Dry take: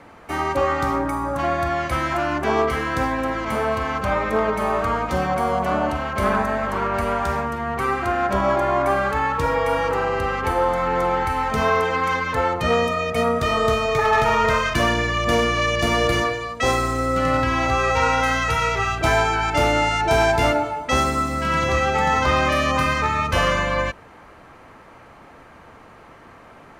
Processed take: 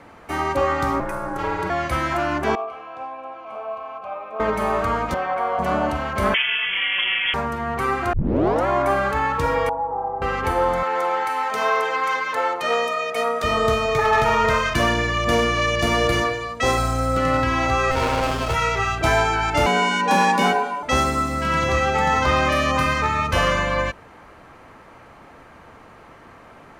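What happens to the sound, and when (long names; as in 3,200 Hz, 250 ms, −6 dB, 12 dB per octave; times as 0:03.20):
0:01.00–0:01.70: ring modulation 260 Hz
0:02.55–0:04.40: formant filter a
0:05.14–0:05.59: three-way crossover with the lows and the highs turned down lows −19 dB, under 410 Hz, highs −18 dB, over 3,200 Hz
0:06.34–0:07.34: voice inversion scrambler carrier 3,300 Hz
0:08.13: tape start 0.54 s
0:09.69–0:10.22: transistor ladder low-pass 890 Hz, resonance 75%
0:10.83–0:13.44: high-pass filter 470 Hz
0:16.77–0:17.17: comb filter 1.3 ms, depth 64%
0:17.91–0:18.54: windowed peak hold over 17 samples
0:19.66–0:20.83: frequency shifter +130 Hz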